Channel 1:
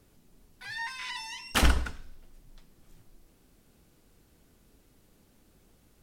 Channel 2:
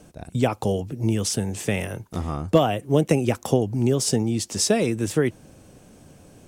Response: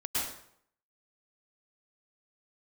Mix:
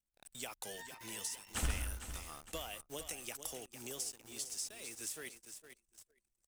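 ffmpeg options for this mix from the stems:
-filter_complex "[0:a]equalizer=frequency=85:width_type=o:width=1:gain=8.5,volume=-18dB,asplit=3[link_01][link_02][link_03];[link_02]volume=-12.5dB[link_04];[link_03]volume=-10dB[link_05];[1:a]aderivative,acompressor=threshold=-38dB:ratio=10,acrusher=bits=8:mix=0:aa=0.000001,volume=-1.5dB,asplit=3[link_06][link_07][link_08];[link_07]volume=-10dB[link_09];[link_08]apad=whole_len=265583[link_10];[link_01][link_10]sidechaingate=range=-33dB:threshold=-57dB:ratio=16:detection=peak[link_11];[2:a]atrim=start_sample=2205[link_12];[link_04][link_12]afir=irnorm=-1:irlink=0[link_13];[link_05][link_09]amix=inputs=2:normalize=0,aecho=0:1:455|910|1365|1820|2275|2730:1|0.46|0.212|0.0973|0.0448|0.0206[link_14];[link_11][link_06][link_13][link_14]amix=inputs=4:normalize=0,anlmdn=0.000398"

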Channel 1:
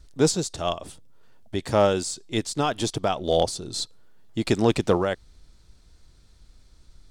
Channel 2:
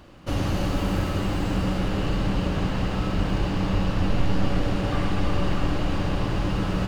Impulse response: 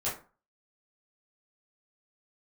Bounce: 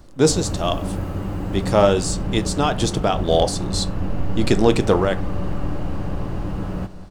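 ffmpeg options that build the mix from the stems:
-filter_complex "[0:a]volume=3dB,asplit=2[link_01][link_02];[link_02]volume=-16dB[link_03];[1:a]equalizer=frequency=3900:width=0.5:gain=-12,volume=-1dB,asplit=2[link_04][link_05];[link_05]volume=-13.5dB[link_06];[2:a]atrim=start_sample=2205[link_07];[link_03][link_07]afir=irnorm=-1:irlink=0[link_08];[link_06]aecho=0:1:194|388|582|776|970|1164|1358|1552|1746:1|0.58|0.336|0.195|0.113|0.0656|0.0381|0.0221|0.0128[link_09];[link_01][link_04][link_08][link_09]amix=inputs=4:normalize=0"

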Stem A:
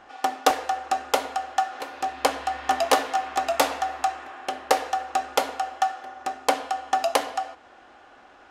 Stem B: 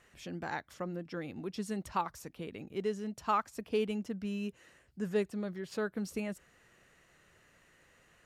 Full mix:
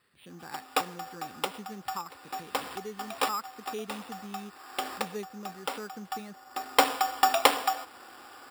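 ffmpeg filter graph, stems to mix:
ffmpeg -i stem1.wav -i stem2.wav -filter_complex "[0:a]adelay=300,volume=1.5dB[link_01];[1:a]highshelf=frequency=5900:gain=-8,volume=-6dB,asplit=2[link_02][link_03];[link_03]apad=whole_len=388516[link_04];[link_01][link_04]sidechaincompress=threshold=-57dB:ratio=8:attack=40:release=390[link_05];[link_05][link_02]amix=inputs=2:normalize=0,highpass=100,equalizer=frequency=640:width_type=q:width=4:gain=-7,equalizer=frequency=1200:width_type=q:width=4:gain=5,equalizer=frequency=3700:width_type=q:width=4:gain=9,lowpass=frequency=4800:width=0.5412,lowpass=frequency=4800:width=1.3066,acrusher=samples=7:mix=1:aa=0.000001" out.wav

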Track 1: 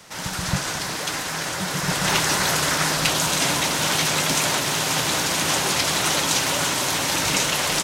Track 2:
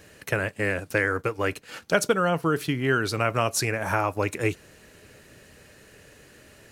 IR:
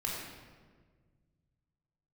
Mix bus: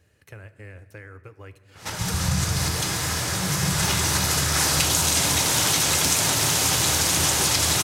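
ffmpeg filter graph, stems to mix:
-filter_complex "[0:a]adynamicequalizer=threshold=0.0141:dfrequency=4500:dqfactor=0.7:tfrequency=4500:tqfactor=0.7:attack=5:release=100:ratio=0.375:range=4:mode=boostabove:tftype=highshelf,adelay=1750,volume=1.5dB,asplit=2[link_01][link_02];[link_02]volume=-8.5dB[link_03];[1:a]acompressor=threshold=-33dB:ratio=1.5,volume=-16.5dB,asplit=3[link_04][link_05][link_06];[link_05]volume=-15dB[link_07];[link_06]apad=whole_len=422510[link_08];[link_01][link_08]sidechaincompress=threshold=-59dB:ratio=8:attack=16:release=108[link_09];[2:a]atrim=start_sample=2205[link_10];[link_03][link_07]amix=inputs=2:normalize=0[link_11];[link_11][link_10]afir=irnorm=-1:irlink=0[link_12];[link_09][link_04][link_12]amix=inputs=3:normalize=0,equalizer=frequency=85:width_type=o:width=0.92:gain=14.5,acompressor=threshold=-19dB:ratio=4"

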